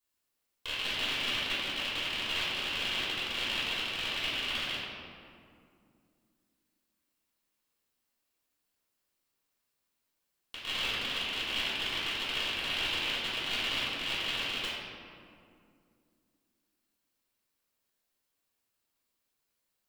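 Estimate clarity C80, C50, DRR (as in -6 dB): 0.0 dB, -2.0 dB, -13.0 dB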